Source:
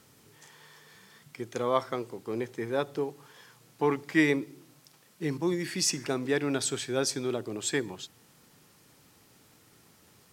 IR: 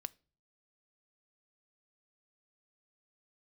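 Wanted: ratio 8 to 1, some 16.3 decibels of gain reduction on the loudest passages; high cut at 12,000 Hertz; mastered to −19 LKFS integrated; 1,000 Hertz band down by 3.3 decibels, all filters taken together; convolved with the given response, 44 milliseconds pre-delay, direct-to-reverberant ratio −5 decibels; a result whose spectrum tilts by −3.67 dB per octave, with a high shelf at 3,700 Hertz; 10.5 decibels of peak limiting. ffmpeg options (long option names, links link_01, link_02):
-filter_complex "[0:a]lowpass=12000,equalizer=frequency=1000:width_type=o:gain=-4.5,highshelf=frequency=3700:gain=5.5,acompressor=threshold=-36dB:ratio=8,alimiter=level_in=11dB:limit=-24dB:level=0:latency=1,volume=-11dB,asplit=2[link_01][link_02];[1:a]atrim=start_sample=2205,adelay=44[link_03];[link_02][link_03]afir=irnorm=-1:irlink=0,volume=8dB[link_04];[link_01][link_04]amix=inputs=2:normalize=0,volume=22dB"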